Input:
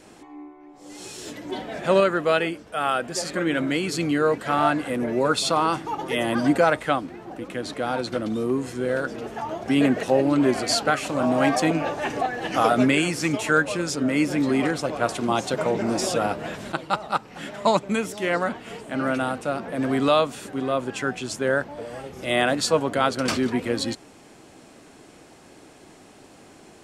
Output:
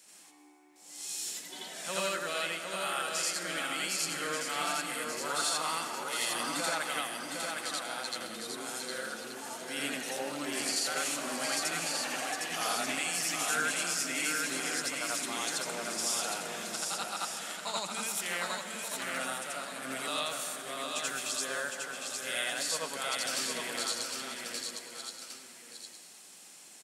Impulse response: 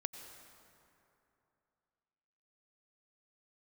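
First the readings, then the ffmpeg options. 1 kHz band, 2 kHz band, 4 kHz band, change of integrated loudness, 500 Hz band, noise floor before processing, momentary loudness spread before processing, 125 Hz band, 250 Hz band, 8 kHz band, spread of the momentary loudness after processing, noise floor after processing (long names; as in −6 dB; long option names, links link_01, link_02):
−11.0 dB, −6.5 dB, −2.5 dB, −9.5 dB, −16.0 dB, −49 dBFS, 12 LU, −21.0 dB, −19.5 dB, +2.5 dB, 9 LU, −53 dBFS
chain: -filter_complex "[0:a]aderivative,asplit=2[link_01][link_02];[link_02]aecho=0:1:1177:0.237[link_03];[link_01][link_03]amix=inputs=2:normalize=0,alimiter=level_in=1dB:limit=-24dB:level=0:latency=1:release=92,volume=-1dB,equalizer=frequency=180:width_type=o:width=0.6:gain=11,aecho=1:1:759:0.596,asplit=2[link_04][link_05];[1:a]atrim=start_sample=2205,adelay=84[link_06];[link_05][link_06]afir=irnorm=-1:irlink=0,volume=4dB[link_07];[link_04][link_07]amix=inputs=2:normalize=0"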